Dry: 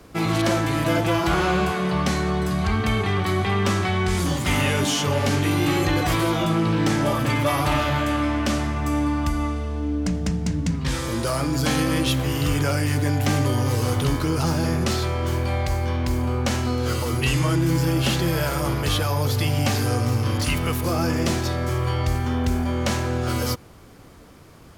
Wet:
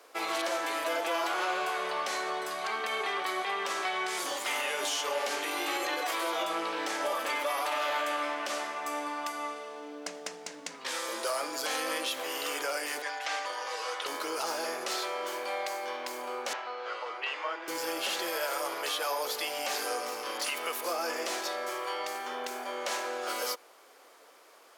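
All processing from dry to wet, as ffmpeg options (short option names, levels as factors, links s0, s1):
-filter_complex "[0:a]asettb=1/sr,asplit=3[s0][s1][s2];[s0]atrim=end=13.024[s3];[s1]atrim=start=13.02:end=14.06,asetpts=PTS-STARTPTS,afade=t=in:d=0.004:c=qsin,afade=t=out:st=1.036:d=0.004:c=qsin,highpass=710,lowpass=5300,aecho=1:1:6.2:0.56,atrim=end_sample=45864[s4];[s2]atrim=start=14.056[s5];[s3][s4]acrossfade=d=0.004:c1=hsin:c2=qsin[s6];[s6][s5]acrossfade=d=0.004:c1=qsin:c2=hsin,asettb=1/sr,asplit=3[s7][s8][s9];[s7]atrim=end=16.534[s10];[s8]atrim=start=16.53:end=17.68,asetpts=PTS-STARTPTS,afade=t=in:d=0.004:c=qsin,afade=t=out:st=1.146:d=0.004:c=qsin,highpass=630,lowpass=3700,aemphasis=mode=reproduction:type=75fm[s11];[s9]atrim=start=17.676[s12];[s10][s11]acrossfade=d=0.004:c1=hsin:c2=qsin[s13];[s13][s12]acrossfade=d=0.004:c1=qsin:c2=hsin,highpass=f=470:w=0.5412,highpass=f=470:w=1.3066,alimiter=limit=0.126:level=0:latency=1:release=70,volume=0.631"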